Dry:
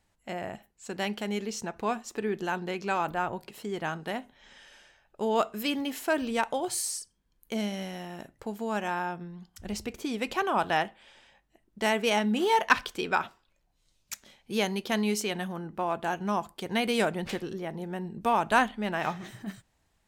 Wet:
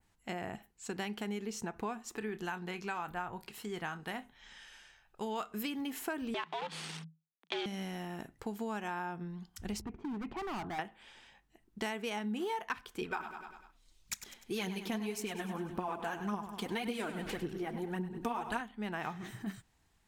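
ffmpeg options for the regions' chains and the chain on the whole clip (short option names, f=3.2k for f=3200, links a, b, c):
-filter_complex "[0:a]asettb=1/sr,asplit=3[a][b][c];[a]atrim=end=2.174[d];[b]atrim=start=2.17:end=5.51,asetpts=PTS-STARTPTS,afade=t=in:d=0.004:c=qsin,afade=t=out:st=3.336:d=0.004:c=qsin,equalizer=f=330:t=o:w=2.2:g=-6.5,asplit=2[e][f];[f]adelay=28,volume=-13dB[g];[e][g]amix=inputs=2:normalize=0,atrim=end_sample=147294[h];[c]atrim=start=5.506[i];[d][h]acrossfade=d=0.004:c1=hsin:c2=qsin[j];[j][i]acrossfade=d=0.004:c1=qsin:c2=hsin,asettb=1/sr,asplit=3[k][l][m];[k]atrim=end=6.344[n];[l]atrim=start=6.34:end=7.66,asetpts=PTS-STARTPTS,afade=t=in:d=0.004:c=qsin,afade=t=out:st=1.316:d=0.004:c=qsin,acrusher=bits=6:dc=4:mix=0:aa=0.000001,afreqshift=160,lowpass=f=3.4k:t=q:w=2.5[o];[m]atrim=start=7.656[p];[n][o]acrossfade=d=0.004:c1=hsin:c2=qsin[q];[q][p]acrossfade=d=0.004:c1=qsin:c2=hsin,asettb=1/sr,asplit=3[r][s][t];[r]atrim=end=9.814[u];[s]atrim=start=9.81:end=10.79,asetpts=PTS-STARTPTS,afade=t=in:d=0.004:c=qsin,afade=t=out:st=0.976:d=0.004:c=qsin,lowpass=1k,asoftclip=type=hard:threshold=-33.5dB,equalizer=f=500:t=o:w=0.33:g=-13.5[v];[t]atrim=start=10.786[w];[u][v]acrossfade=d=0.004:c1=hsin:c2=qsin[x];[x][w]acrossfade=d=0.004:c1=qsin:c2=hsin,asettb=1/sr,asplit=3[y][z][aa];[y]atrim=end=13.014[ab];[z]atrim=start=13.01:end=18.61,asetpts=PTS-STARTPTS,afade=t=in:d=0.004:c=qsin,afade=t=out:st=5.596:d=0.004:c=qsin,aphaser=in_gain=1:out_gain=1:delay=4.6:decay=0.58:speed=1.8:type=triangular,deesser=0.3,aecho=1:1:99|198|297|396|495:0.251|0.126|0.0628|0.0314|0.0157,atrim=end_sample=246960[ac];[aa]atrim=start=18.606[ad];[ab][ac]acrossfade=d=0.004:c1=hsin:c2=qsin[ae];[ae][ad]acrossfade=d=0.004:c1=qsin:c2=hsin,equalizer=f=580:w=4.4:g=-9,acompressor=threshold=-34dB:ratio=6,adynamicequalizer=threshold=0.00141:dfrequency=4600:dqfactor=0.83:tfrequency=4600:tqfactor=0.83:attack=5:release=100:ratio=0.375:range=3.5:mode=cutabove:tftype=bell"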